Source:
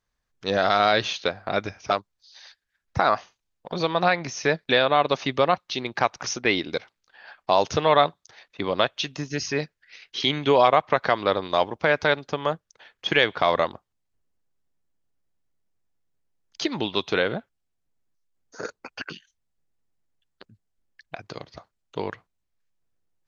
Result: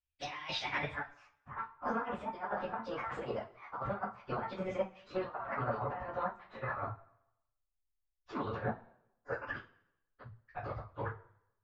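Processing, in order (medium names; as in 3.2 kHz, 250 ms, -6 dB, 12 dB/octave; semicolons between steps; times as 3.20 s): pitch bend over the whole clip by +7 st ending unshifted; low-pass that closes with the level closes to 2.9 kHz, closed at -21.5 dBFS; de-hum 225.7 Hz, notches 9; gate with hold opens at -56 dBFS; FFT filter 110 Hz 0 dB, 160 Hz -19 dB, 1.2 kHz -15 dB, 5.3 kHz -10 dB; compressor with a negative ratio -44 dBFS, ratio -0.5; low-pass sweep 3.2 kHz -> 1.2 kHz, 1.14–2.31 s; two-slope reverb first 0.44 s, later 1.7 s, from -20 dB, DRR -5.5 dB; plain phase-vocoder stretch 0.5×; trim +4 dB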